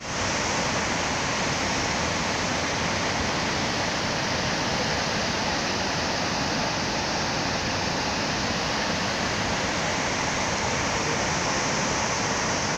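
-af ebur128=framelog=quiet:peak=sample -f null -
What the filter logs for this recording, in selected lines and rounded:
Integrated loudness:
  I:         -24.8 LUFS
  Threshold: -34.8 LUFS
Loudness range:
  LRA:         0.6 LU
  Threshold: -44.8 LUFS
  LRA low:   -25.1 LUFS
  LRA high:  -24.5 LUFS
Sample peak:
  Peak:      -12.5 dBFS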